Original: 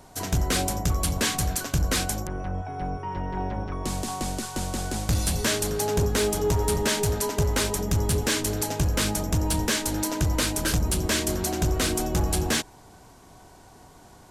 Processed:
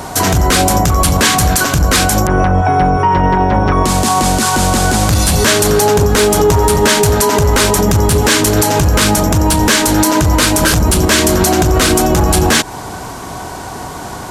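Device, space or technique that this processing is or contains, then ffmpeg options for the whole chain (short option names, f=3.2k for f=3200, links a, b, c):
mastering chain: -af "highpass=f=55:p=1,equalizer=f=1.2k:t=o:w=1.1:g=4,acompressor=threshold=-28dB:ratio=6,alimiter=level_in=26dB:limit=-1dB:release=50:level=0:latency=1,volume=-2dB"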